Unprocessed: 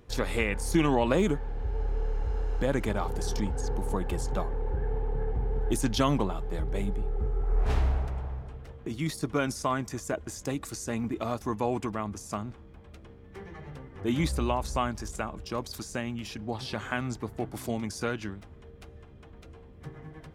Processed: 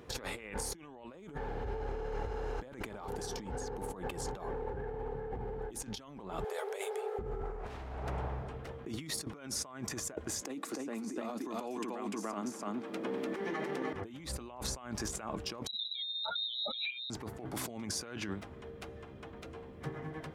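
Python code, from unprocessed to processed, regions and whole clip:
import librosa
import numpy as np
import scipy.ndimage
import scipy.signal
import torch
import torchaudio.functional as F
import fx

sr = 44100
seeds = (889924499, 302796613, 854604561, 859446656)

y = fx.chain(x, sr, fx.brickwall_highpass(low_hz=380.0),
    fx.peak_eq(hz=11000.0, db=8.5, octaves=1.8), at=(6.44, 7.19))
y = fx.chain(y, sr, fx.ladder_highpass(hz=200.0, resonance_pct=35),
    fx.echo_single(ms=296, db=-3.5),
    fx.band_squash(depth_pct=100), at=(10.41, 13.93))
y = fx.chain(y, sr, fx.spec_expand(power=3.5),
    fx.hum_notches(base_hz=60, count=9),
    fx.freq_invert(carrier_hz=3900), at=(15.67, 17.1))
y = fx.highpass(y, sr, hz=240.0, slope=6)
y = fx.high_shelf(y, sr, hz=3100.0, db=-4.0)
y = fx.over_compress(y, sr, threshold_db=-42.0, ratio=-1.0)
y = y * 10.0 ** (1.0 / 20.0)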